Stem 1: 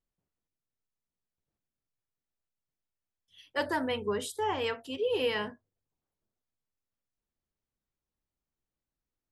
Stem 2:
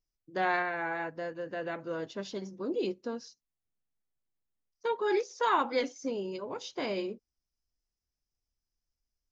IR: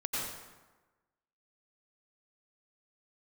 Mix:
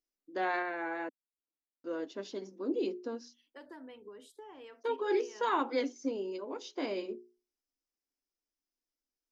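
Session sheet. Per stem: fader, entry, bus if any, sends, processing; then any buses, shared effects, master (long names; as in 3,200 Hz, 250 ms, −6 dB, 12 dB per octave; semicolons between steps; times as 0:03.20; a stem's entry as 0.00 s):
−15.5 dB, 0.00 s, no send, high-shelf EQ 6,400 Hz −6.5 dB; downward compressor 6 to 1, threshold −34 dBFS, peak gain reduction 9 dB
−4.5 dB, 0.00 s, muted 0:01.09–0:01.84, no send, mains-hum notches 60/120/180/240/300/360/420 Hz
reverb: not used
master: low shelf with overshoot 190 Hz −13 dB, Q 3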